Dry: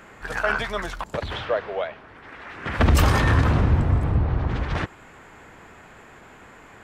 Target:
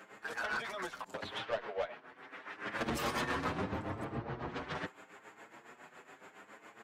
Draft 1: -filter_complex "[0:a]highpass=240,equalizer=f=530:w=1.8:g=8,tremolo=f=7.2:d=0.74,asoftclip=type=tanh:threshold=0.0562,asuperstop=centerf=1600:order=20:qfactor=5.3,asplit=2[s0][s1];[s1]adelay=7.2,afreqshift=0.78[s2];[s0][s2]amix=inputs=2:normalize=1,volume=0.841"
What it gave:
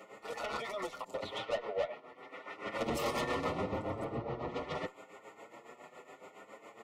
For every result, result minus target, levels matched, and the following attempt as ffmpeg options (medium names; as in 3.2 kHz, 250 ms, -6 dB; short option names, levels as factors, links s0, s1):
2 kHz band -5.0 dB; 500 Hz band +3.5 dB
-filter_complex "[0:a]highpass=240,equalizer=f=530:w=1.8:g=8,tremolo=f=7.2:d=0.74,asoftclip=type=tanh:threshold=0.0562,asplit=2[s0][s1];[s1]adelay=7.2,afreqshift=0.78[s2];[s0][s2]amix=inputs=2:normalize=1,volume=0.841"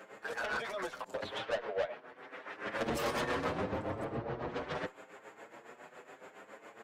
500 Hz band +3.0 dB
-filter_complex "[0:a]highpass=240,tremolo=f=7.2:d=0.74,asoftclip=type=tanh:threshold=0.0562,asplit=2[s0][s1];[s1]adelay=7.2,afreqshift=0.78[s2];[s0][s2]amix=inputs=2:normalize=1,volume=0.841"